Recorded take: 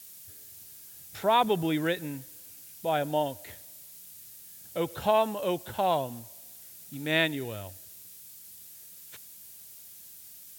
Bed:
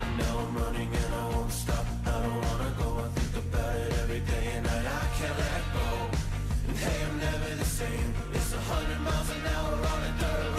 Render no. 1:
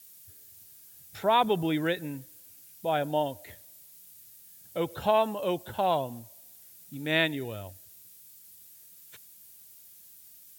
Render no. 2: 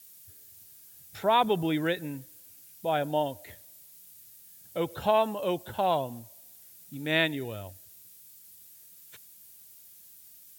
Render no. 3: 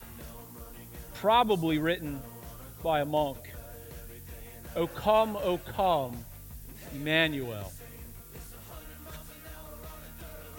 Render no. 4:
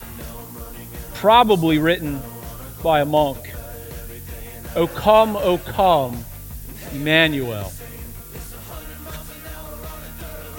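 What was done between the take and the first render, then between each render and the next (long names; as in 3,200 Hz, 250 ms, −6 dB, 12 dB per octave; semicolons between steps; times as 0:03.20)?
broadband denoise 6 dB, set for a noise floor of −49 dBFS
no processing that can be heard
mix in bed −16.5 dB
level +11 dB; brickwall limiter −1 dBFS, peak gain reduction 1 dB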